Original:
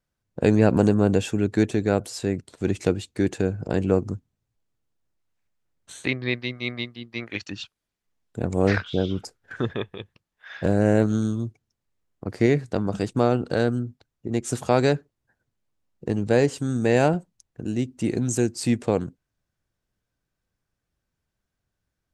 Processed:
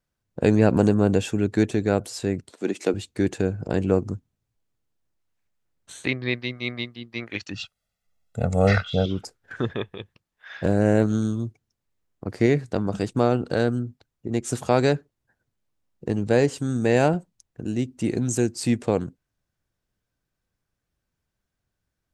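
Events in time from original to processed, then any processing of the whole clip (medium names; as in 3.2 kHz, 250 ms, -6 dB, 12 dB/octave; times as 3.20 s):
2.51–2.94 s: high-pass 220 Hz 24 dB/octave
7.54–9.06 s: comb 1.5 ms, depth 94%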